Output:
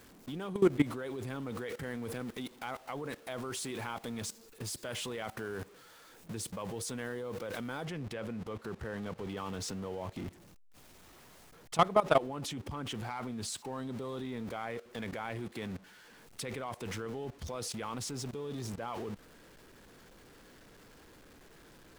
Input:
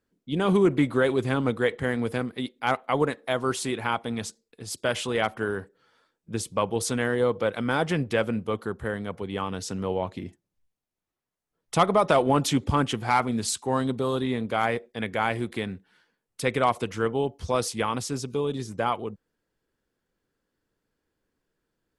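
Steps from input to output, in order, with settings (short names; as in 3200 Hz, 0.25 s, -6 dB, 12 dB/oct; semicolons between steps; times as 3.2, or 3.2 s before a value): zero-crossing step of -34.5 dBFS; high shelf 7600 Hz +2.5 dB, from 7.85 s -8.5 dB, from 9.37 s -4 dB; level quantiser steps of 18 dB; gain -3 dB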